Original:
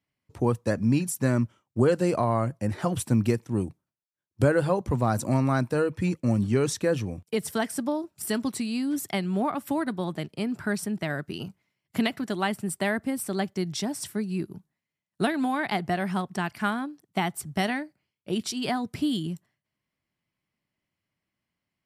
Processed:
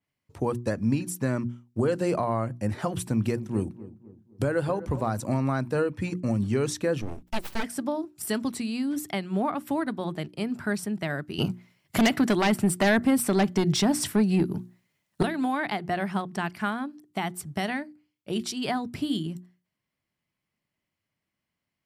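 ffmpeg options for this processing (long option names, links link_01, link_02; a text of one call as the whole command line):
ffmpeg -i in.wav -filter_complex "[0:a]asettb=1/sr,asplit=3[link_01][link_02][link_03];[link_01]atrim=end=2.914[link_04];[link_02]atrim=start=2.91:end=5.11,asetpts=PTS-STARTPTS,afade=type=in:duration=0.004:curve=qsin,afade=type=out:start_time=2.196:duration=0.004:curve=qsin,asplit=2[link_05][link_06];[link_06]adelay=254,lowpass=frequency=1100:poles=1,volume=-16dB,asplit=2[link_07][link_08];[link_08]adelay=254,lowpass=frequency=1100:poles=1,volume=0.46,asplit=2[link_09][link_10];[link_10]adelay=254,lowpass=frequency=1100:poles=1,volume=0.46,asplit=2[link_11][link_12];[link_12]adelay=254,lowpass=frequency=1100:poles=1,volume=0.46[link_13];[link_05][link_07][link_09][link_11][link_13]amix=inputs=5:normalize=0,atrim=end_sample=97020[link_14];[link_03]atrim=start=5.106[link_15];[link_04][link_14]acrossfade=duration=0.004:curve1=hsin:curve2=qsin[link_16];[link_16][link_15]acrossfade=duration=0.004:curve1=qsin:curve2=hsin,asplit=3[link_17][link_18][link_19];[link_17]afade=type=out:start_time=7.01:duration=0.02[link_20];[link_18]aeval=exprs='abs(val(0))':channel_layout=same,afade=type=in:start_time=7.01:duration=0.02,afade=type=out:start_time=7.62:duration=0.02[link_21];[link_19]afade=type=in:start_time=7.62:duration=0.02[link_22];[link_20][link_21][link_22]amix=inputs=3:normalize=0,asettb=1/sr,asplit=3[link_23][link_24][link_25];[link_23]atrim=end=11.384[link_26];[link_24]atrim=start=11.38:end=15.23,asetpts=PTS-STARTPTS,afade=type=in:duration=0.004:curve=qsin,afade=type=out:start_time=3.846:duration=0.004:curve=qsin,aeval=exprs='0.266*sin(PI/2*2.82*val(0)/0.266)':channel_layout=same[link_27];[link_25]atrim=start=15.226[link_28];[link_26][link_27]acrossfade=duration=0.004:curve1=hsin:curve2=qsin[link_29];[link_29][link_28]acrossfade=duration=0.004:curve1=qsin:curve2=hsin,bandreject=frequency=60:width_type=h:width=6,bandreject=frequency=120:width_type=h:width=6,bandreject=frequency=180:width_type=h:width=6,bandreject=frequency=240:width_type=h:width=6,bandreject=frequency=300:width_type=h:width=6,bandreject=frequency=360:width_type=h:width=6,alimiter=limit=-15dB:level=0:latency=1:release=187,adynamicequalizer=threshold=0.00447:dfrequency=4300:dqfactor=0.7:tfrequency=4300:tqfactor=0.7:attack=5:release=100:ratio=0.375:range=2.5:mode=cutabove:tftype=highshelf" out.wav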